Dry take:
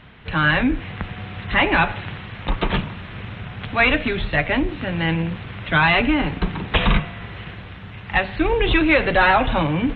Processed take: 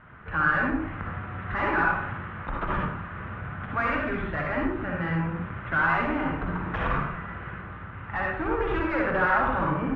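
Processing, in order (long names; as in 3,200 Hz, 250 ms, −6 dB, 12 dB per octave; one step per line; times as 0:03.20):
soft clipping −19.5 dBFS, distortion −8 dB
low-pass with resonance 1,400 Hz, resonance Q 3.4
convolution reverb RT60 0.50 s, pre-delay 53 ms, DRR −1.5 dB
level −8 dB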